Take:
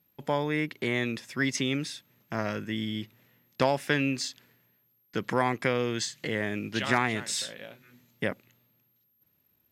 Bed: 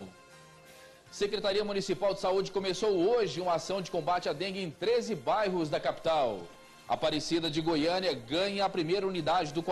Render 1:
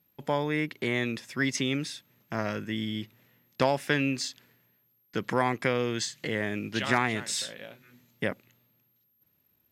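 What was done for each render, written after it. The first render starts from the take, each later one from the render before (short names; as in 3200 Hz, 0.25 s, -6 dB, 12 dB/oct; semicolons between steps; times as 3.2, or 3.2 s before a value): nothing audible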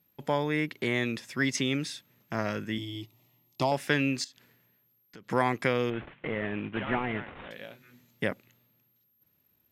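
2.78–3.72 fixed phaser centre 320 Hz, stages 8; 4.24–5.3 compressor 3:1, threshold -51 dBFS; 5.9–7.51 CVSD 16 kbps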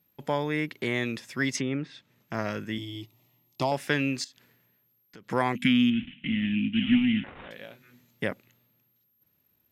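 1.57–2.34 treble ducked by the level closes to 1700 Hz, closed at -28 dBFS; 5.55–7.24 EQ curve 130 Hz 0 dB, 250 Hz +15 dB, 430 Hz -27 dB, 640 Hz -22 dB, 1100 Hz -22 dB, 3000 Hz +14 dB, 4900 Hz -7 dB, 7000 Hz +1 dB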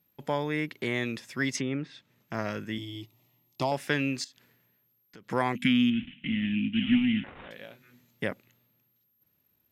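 gain -1.5 dB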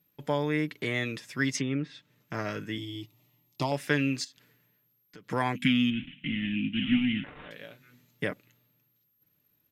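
bell 790 Hz -3.5 dB 0.63 oct; comb 6.7 ms, depth 40%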